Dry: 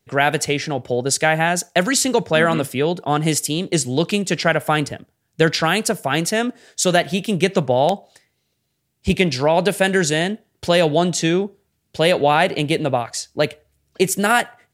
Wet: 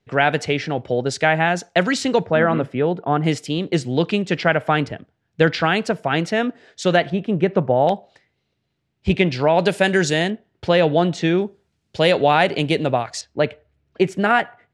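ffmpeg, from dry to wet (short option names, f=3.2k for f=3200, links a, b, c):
-af "asetnsamples=n=441:p=0,asendcmd='2.26 lowpass f 1700;3.24 lowpass f 3200;7.1 lowpass f 1500;7.87 lowpass f 3300;9.59 lowpass f 6000;10.3 lowpass f 3000;11.38 lowpass f 6100;13.21 lowpass f 2500',lowpass=3.8k"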